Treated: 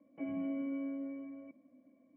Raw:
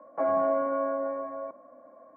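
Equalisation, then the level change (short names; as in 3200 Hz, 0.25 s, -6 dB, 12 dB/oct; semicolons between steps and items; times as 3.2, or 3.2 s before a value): vocal tract filter i; low shelf 140 Hz -10.5 dB; band shelf 570 Hz -11.5 dB 3 oct; +14.0 dB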